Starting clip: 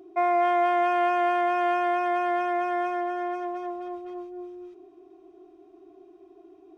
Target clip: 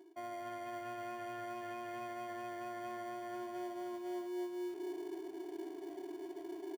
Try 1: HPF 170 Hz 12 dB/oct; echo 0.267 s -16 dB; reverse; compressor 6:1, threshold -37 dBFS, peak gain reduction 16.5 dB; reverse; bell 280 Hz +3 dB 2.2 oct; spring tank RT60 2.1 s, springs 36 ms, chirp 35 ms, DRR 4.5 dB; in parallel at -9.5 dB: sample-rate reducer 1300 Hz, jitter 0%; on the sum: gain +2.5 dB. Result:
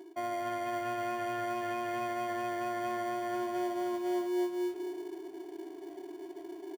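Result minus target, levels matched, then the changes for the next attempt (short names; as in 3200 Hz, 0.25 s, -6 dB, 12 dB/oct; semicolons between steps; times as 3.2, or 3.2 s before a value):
compressor: peak gain reduction -9 dB
change: compressor 6:1, threshold -48 dBFS, peak gain reduction 25.5 dB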